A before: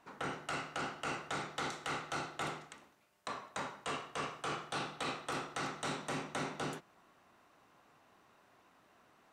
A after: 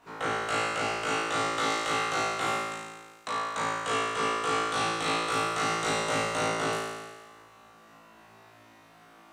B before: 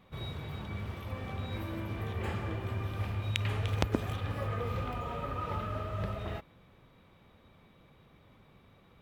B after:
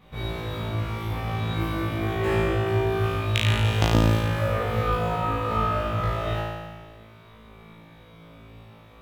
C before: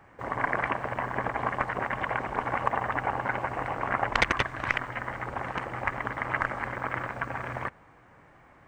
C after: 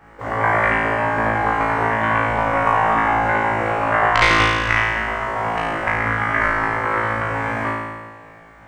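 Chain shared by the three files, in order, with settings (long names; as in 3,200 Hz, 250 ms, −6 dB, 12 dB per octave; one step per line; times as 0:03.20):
flutter between parallel walls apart 3.1 metres, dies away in 1.4 s
level +4 dB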